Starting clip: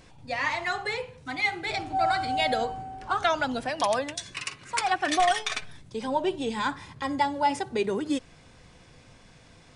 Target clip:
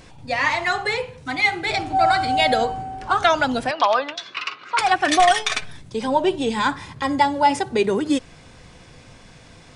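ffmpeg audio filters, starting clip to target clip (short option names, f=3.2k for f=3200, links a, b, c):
-filter_complex "[0:a]asettb=1/sr,asplit=3[a][b][c];[a]atrim=end=3.714[d];[b]atrim=start=3.71:end=4.79,asetpts=PTS-STARTPTS,afade=t=in:d=0.004:c=qsin,afade=t=out:st=1.076:d=0.004:c=qsin,highpass=400,equalizer=f=560:t=q:w=4:g=-3,equalizer=f=1.3k:t=q:w=4:g=9,equalizer=f=1.8k:t=q:w=4:g=-5,lowpass=f=4.4k:w=0.5412,lowpass=f=4.4k:w=1.3066[e];[c]atrim=start=4.786[f];[d][e]acrossfade=d=0.004:c1=hsin:c2=qsin[g];[g][f]acrossfade=d=0.004:c1=qsin:c2=hsin,volume=7.5dB"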